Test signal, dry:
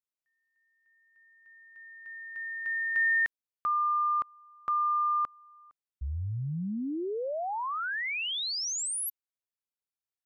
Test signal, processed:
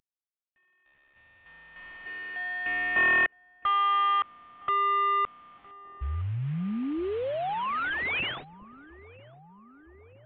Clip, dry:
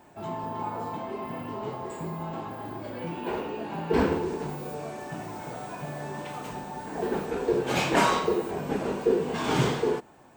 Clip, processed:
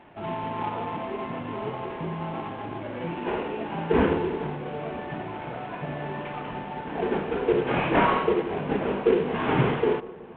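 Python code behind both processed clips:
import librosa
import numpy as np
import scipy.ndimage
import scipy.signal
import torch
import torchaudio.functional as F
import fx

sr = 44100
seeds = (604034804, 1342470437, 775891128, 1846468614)

y = fx.cvsd(x, sr, bps=16000)
y = fx.echo_filtered(y, sr, ms=963, feedback_pct=78, hz=1100.0, wet_db=-20)
y = y * librosa.db_to_amplitude(3.0)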